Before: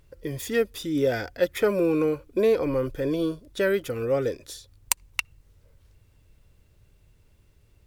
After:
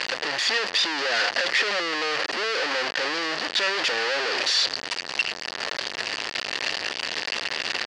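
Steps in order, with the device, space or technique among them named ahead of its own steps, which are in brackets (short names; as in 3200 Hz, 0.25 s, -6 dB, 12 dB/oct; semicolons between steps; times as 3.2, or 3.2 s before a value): home computer beeper (infinite clipping; speaker cabinet 600–5800 Hz, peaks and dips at 1800 Hz +9 dB, 2800 Hz +6 dB, 4600 Hz +10 dB); gain +4 dB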